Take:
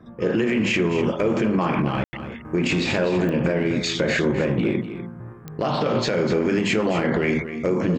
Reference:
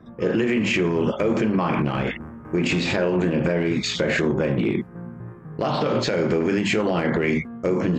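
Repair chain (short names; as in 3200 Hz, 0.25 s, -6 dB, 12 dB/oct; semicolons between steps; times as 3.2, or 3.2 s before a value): de-click; room tone fill 2.04–2.13; inverse comb 0.248 s -11 dB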